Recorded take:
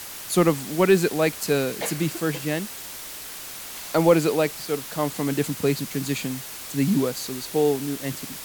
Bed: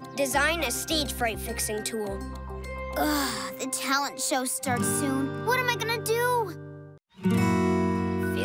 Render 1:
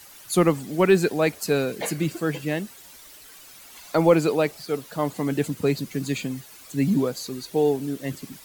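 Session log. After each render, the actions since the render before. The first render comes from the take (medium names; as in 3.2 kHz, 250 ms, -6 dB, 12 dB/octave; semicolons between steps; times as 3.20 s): noise reduction 12 dB, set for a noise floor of -37 dBFS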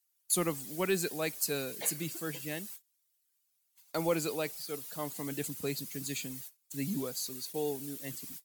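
gate -41 dBFS, range -32 dB; pre-emphasis filter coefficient 0.8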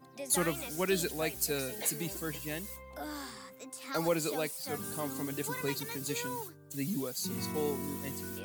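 add bed -15.5 dB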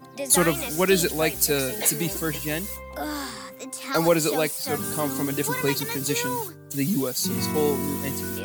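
trim +10.5 dB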